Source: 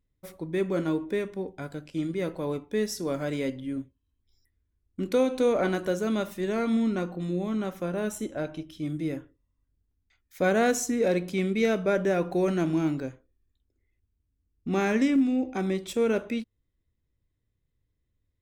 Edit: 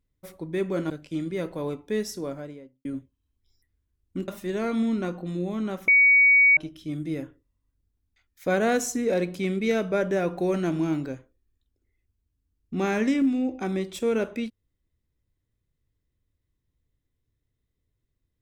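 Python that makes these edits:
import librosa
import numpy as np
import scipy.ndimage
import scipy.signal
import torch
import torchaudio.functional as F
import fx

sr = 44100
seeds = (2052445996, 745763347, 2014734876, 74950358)

y = fx.studio_fade_out(x, sr, start_s=2.8, length_s=0.88)
y = fx.edit(y, sr, fx.cut(start_s=0.9, length_s=0.83),
    fx.cut(start_s=5.11, length_s=1.11),
    fx.bleep(start_s=7.82, length_s=0.69, hz=2250.0, db=-13.5), tone=tone)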